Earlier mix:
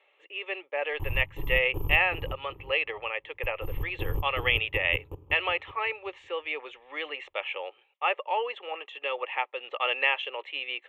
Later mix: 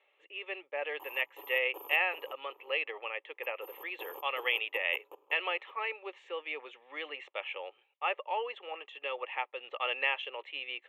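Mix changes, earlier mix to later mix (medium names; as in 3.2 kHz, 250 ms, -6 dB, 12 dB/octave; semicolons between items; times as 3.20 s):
speech -5.5 dB; background: add high-pass 520 Hz 24 dB/octave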